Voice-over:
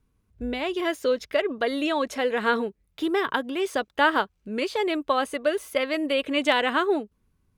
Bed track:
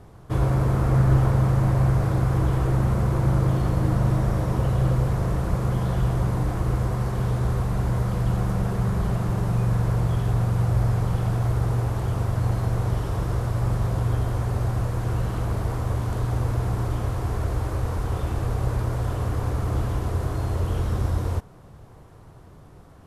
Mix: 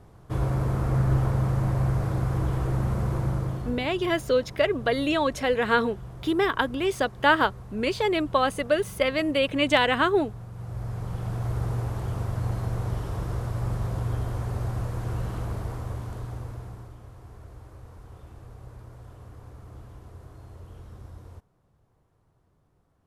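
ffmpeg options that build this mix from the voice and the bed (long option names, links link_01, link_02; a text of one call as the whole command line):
ffmpeg -i stem1.wav -i stem2.wav -filter_complex "[0:a]adelay=3250,volume=1dB[link_01];[1:a]volume=8.5dB,afade=type=out:start_time=3.15:duration=0.74:silence=0.211349,afade=type=in:start_time=10.52:duration=1.08:silence=0.223872,afade=type=out:start_time=15.35:duration=1.6:silence=0.177828[link_02];[link_01][link_02]amix=inputs=2:normalize=0" out.wav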